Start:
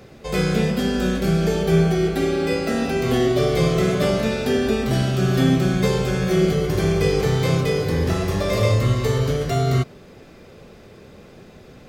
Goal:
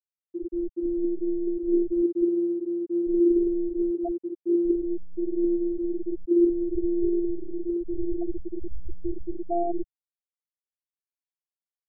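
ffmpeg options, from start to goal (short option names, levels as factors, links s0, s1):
-filter_complex "[0:a]acrusher=samples=14:mix=1:aa=0.000001:lfo=1:lforange=14:lforate=0.58,highshelf=f=6700:g=-8.5,afftfilt=real='hypot(re,im)*cos(PI*b)':imag='0':win_size=512:overlap=0.75,equalizer=f=120:w=0.61:g=-3,afftfilt=real='re*gte(hypot(re,im),0.0355)':imag='im*gte(hypot(re,im),0.0355)':win_size=1024:overlap=0.75,dynaudnorm=f=150:g=5:m=2.99,asplit=2[s0][s1];[s1]adelay=195,lowpass=f=3600:p=1,volume=0.133,asplit=2[s2][s3];[s3]adelay=195,lowpass=f=3600:p=1,volume=0.27[s4];[s0][s2][s4]amix=inputs=3:normalize=0,afftfilt=real='re*gte(hypot(re,im),1.12)':imag='im*gte(hypot(re,im),1.12)':win_size=1024:overlap=0.75,volume=0.501"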